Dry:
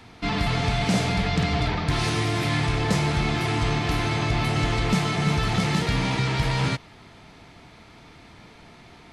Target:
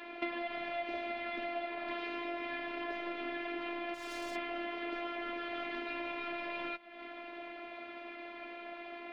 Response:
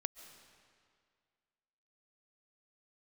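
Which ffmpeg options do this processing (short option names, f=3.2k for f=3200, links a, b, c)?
-filter_complex "[0:a]highpass=f=200:w=0.5412,highpass=f=200:w=1.3066,equalizer=f=590:t=q:w=4:g=10,equalizer=f=880:t=q:w=4:g=-3,equalizer=f=2.4k:t=q:w=4:g=5,lowpass=f=3.1k:w=0.5412,lowpass=f=3.1k:w=1.3066,asettb=1/sr,asplit=3[a][b][c];[a]atrim=end=3.944[d];[b]atrim=start=3.94:end=4.36,asetpts=PTS-STARTPTS,afade=t=in:d=0.004:c=qsin,afade=t=out:st=0.416:d=0.004:c=qsin,asoftclip=type=hard:threshold=-32.5dB[e];[c]atrim=start=4.356[f];[d][e]acrossfade=d=0.004:c1=hsin:c2=qsin[g];[g][f]acrossfade=d=0.004:c1=qsin:c2=hsin,flanger=delay=6.3:depth=5.2:regen=47:speed=0.29:shape=sinusoidal,afftfilt=real='hypot(re,im)*cos(PI*b)':imag='0':win_size=512:overlap=0.75,acompressor=threshold=-43dB:ratio=12,volume=9dB"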